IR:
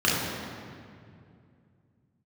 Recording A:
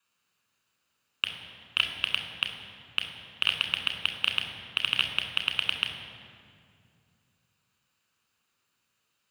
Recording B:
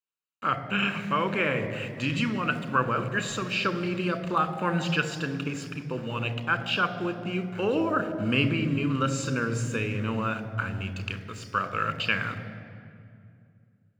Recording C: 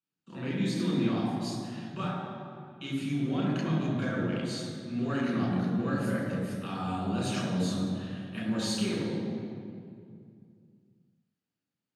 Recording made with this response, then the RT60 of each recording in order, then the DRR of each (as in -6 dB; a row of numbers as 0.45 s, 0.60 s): C; 2.4 s, 2.4 s, 2.4 s; 3.0 dB, 9.5 dB, -6.5 dB